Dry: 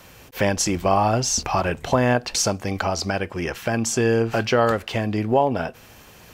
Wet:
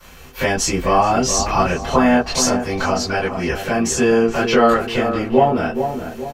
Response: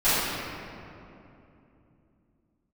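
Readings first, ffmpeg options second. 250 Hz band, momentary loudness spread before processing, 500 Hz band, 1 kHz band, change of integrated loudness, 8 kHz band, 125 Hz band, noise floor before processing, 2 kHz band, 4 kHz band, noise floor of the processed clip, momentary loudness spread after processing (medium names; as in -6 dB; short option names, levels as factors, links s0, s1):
+6.0 dB, 6 LU, +4.5 dB, +5.5 dB, +4.5 dB, +3.5 dB, -1.0 dB, -47 dBFS, +4.5 dB, +3.5 dB, -40 dBFS, 7 LU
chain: -filter_complex "[0:a]asplit=2[s0][s1];[s1]adelay=423,lowpass=f=1200:p=1,volume=0.447,asplit=2[s2][s3];[s3]adelay=423,lowpass=f=1200:p=1,volume=0.46,asplit=2[s4][s5];[s5]adelay=423,lowpass=f=1200:p=1,volume=0.46,asplit=2[s6][s7];[s7]adelay=423,lowpass=f=1200:p=1,volume=0.46,asplit=2[s8][s9];[s9]adelay=423,lowpass=f=1200:p=1,volume=0.46[s10];[s0][s2][s4][s6][s8][s10]amix=inputs=6:normalize=0[s11];[1:a]atrim=start_sample=2205,atrim=end_sample=3528,asetrate=70560,aresample=44100[s12];[s11][s12]afir=irnorm=-1:irlink=0,volume=0.531"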